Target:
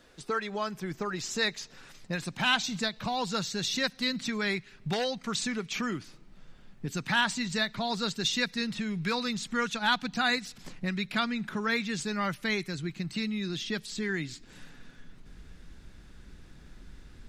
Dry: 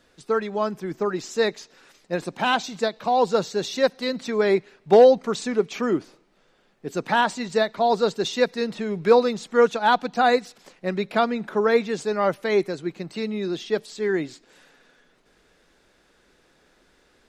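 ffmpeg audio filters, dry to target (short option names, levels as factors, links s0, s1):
-filter_complex "[0:a]asubboost=boost=11:cutoff=150,acrossover=split=1400[s0][s1];[s0]acompressor=threshold=0.02:ratio=6[s2];[s2][s1]amix=inputs=2:normalize=0,volume=1.19"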